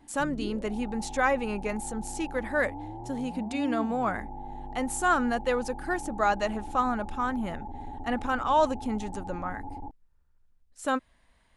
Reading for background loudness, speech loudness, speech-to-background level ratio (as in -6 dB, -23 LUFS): -40.5 LUFS, -30.0 LUFS, 10.5 dB